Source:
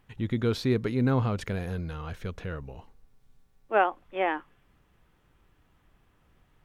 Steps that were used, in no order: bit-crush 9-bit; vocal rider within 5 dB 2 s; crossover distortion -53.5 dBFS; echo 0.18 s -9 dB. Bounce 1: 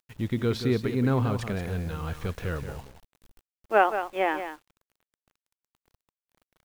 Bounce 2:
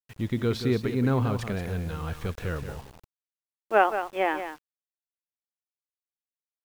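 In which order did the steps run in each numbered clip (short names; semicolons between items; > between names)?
echo > bit-crush > crossover distortion > vocal rider; echo > crossover distortion > bit-crush > vocal rider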